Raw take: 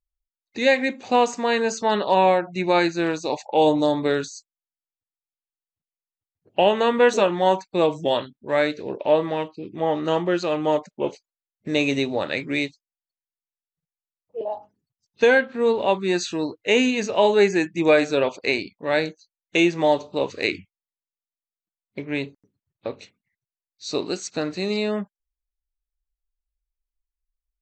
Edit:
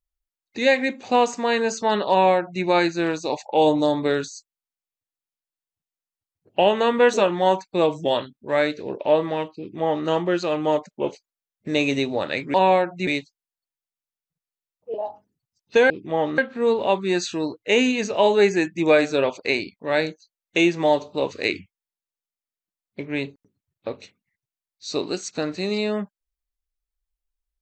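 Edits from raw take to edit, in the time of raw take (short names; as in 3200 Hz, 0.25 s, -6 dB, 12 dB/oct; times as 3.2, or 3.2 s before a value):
2.1–2.63 copy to 12.54
9.59–10.07 copy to 15.37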